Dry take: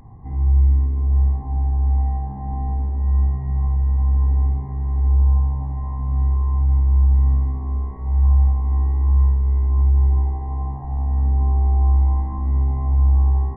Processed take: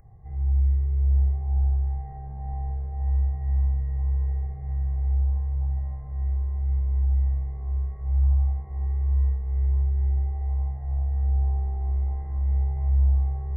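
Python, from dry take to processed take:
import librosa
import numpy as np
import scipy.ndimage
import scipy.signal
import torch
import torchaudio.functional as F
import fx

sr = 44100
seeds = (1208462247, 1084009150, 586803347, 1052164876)

p1 = fx.fixed_phaser(x, sr, hz=980.0, stages=6)
p2 = p1 + fx.echo_feedback(p1, sr, ms=408, feedback_pct=39, wet_db=-7, dry=0)
p3 = fx.doppler_dist(p2, sr, depth_ms=0.16)
y = F.gain(torch.from_numpy(p3), -6.0).numpy()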